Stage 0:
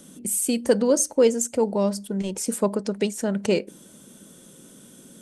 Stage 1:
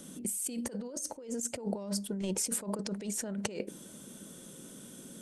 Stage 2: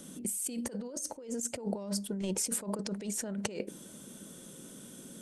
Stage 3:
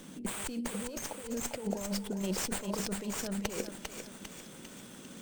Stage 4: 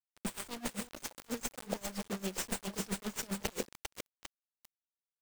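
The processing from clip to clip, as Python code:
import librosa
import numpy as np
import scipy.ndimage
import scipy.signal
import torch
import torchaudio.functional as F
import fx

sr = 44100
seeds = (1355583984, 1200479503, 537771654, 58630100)

y1 = fx.over_compress(x, sr, threshold_db=-30.0, ratio=-1.0)
y1 = y1 * librosa.db_to_amplitude(-7.0)
y2 = y1
y3 = fx.echo_thinned(y2, sr, ms=399, feedback_pct=57, hz=810.0, wet_db=-4.0)
y3 = fx.running_max(y3, sr, window=3)
y4 = fx.quant_dither(y3, sr, seeds[0], bits=6, dither='none')
y4 = y4 * 10.0 ** (-20 * (0.5 - 0.5 * np.cos(2.0 * np.pi * 7.5 * np.arange(len(y4)) / sr)) / 20.0)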